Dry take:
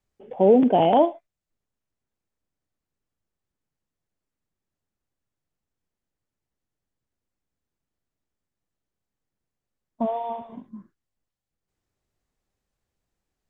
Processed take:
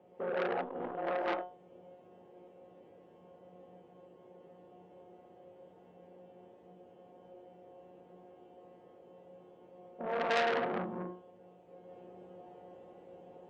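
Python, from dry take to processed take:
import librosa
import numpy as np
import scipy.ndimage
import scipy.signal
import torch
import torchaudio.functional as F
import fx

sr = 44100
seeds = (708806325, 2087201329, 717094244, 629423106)

y = fx.bin_compress(x, sr, power=0.6)
y = scipy.signal.sosfilt(scipy.signal.butter(2, 72.0, 'highpass', fs=sr, output='sos'), y)
y = fx.peak_eq(y, sr, hz=490.0, db=10.5, octaves=0.67)
y = fx.hpss(y, sr, part='harmonic', gain_db=-6)
y = fx.high_shelf(y, sr, hz=2100.0, db=-11.0)
y = fx.over_compress(y, sr, threshold_db=-22.0, ratio=-0.5)
y = fx.comb_fb(y, sr, f0_hz=180.0, decay_s=0.4, harmonics='all', damping=0.0, mix_pct=90)
y = np.clip(y, -10.0 ** (-25.0 / 20.0), 10.0 ** (-25.0 / 20.0))
y = fx.rev_gated(y, sr, seeds[0], gate_ms=260, shape='rising', drr_db=-6.5)
y = fx.transformer_sat(y, sr, knee_hz=2600.0)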